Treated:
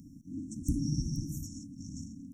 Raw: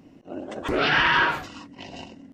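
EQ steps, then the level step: brick-wall FIR band-stop 320–5400 Hz; tone controls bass +11 dB, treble +13 dB; -6.0 dB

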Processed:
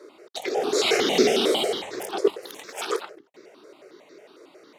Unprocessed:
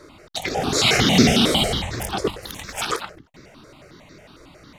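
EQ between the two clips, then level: resonant high-pass 400 Hz, resonance Q 3.7; -6.5 dB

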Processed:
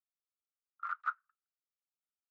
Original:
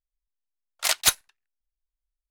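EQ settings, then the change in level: Butterworth band-pass 1.3 kHz, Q 6; +2.0 dB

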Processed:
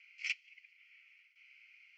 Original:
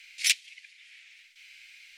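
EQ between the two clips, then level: ladder high-pass 1.2 kHz, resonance 35%; tape spacing loss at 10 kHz 37 dB; static phaser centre 2.5 kHz, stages 8; +6.0 dB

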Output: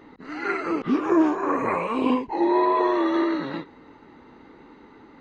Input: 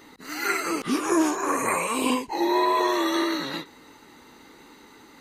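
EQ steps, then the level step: tape spacing loss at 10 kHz 40 dB; +4.5 dB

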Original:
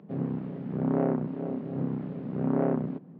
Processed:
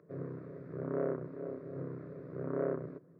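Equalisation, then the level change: static phaser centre 820 Hz, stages 6; -3.5 dB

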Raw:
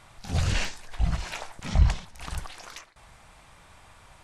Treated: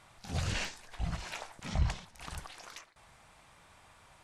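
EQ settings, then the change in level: bass shelf 62 Hz -10 dB; -5.5 dB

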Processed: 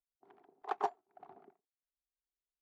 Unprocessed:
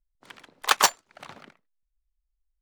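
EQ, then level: two resonant band-passes 540 Hz, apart 0.85 oct; tilt EQ -2 dB/octave; -3.0 dB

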